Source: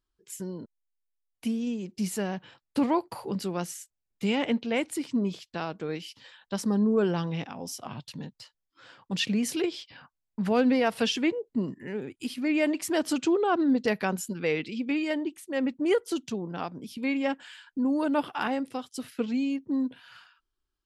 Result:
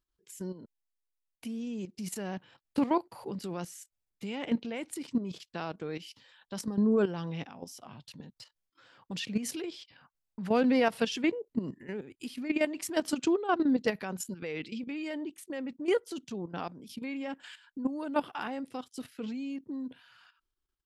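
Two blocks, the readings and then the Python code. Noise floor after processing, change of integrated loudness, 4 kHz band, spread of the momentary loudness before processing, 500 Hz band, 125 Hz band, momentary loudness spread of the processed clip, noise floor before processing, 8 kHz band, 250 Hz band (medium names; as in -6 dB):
-85 dBFS, -4.5 dB, -6.0 dB, 13 LU, -4.0 dB, -5.5 dB, 16 LU, -83 dBFS, -4.5 dB, -4.5 dB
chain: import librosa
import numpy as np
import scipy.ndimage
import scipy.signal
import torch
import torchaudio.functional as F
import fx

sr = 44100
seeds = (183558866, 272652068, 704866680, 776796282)

y = fx.level_steps(x, sr, step_db=12)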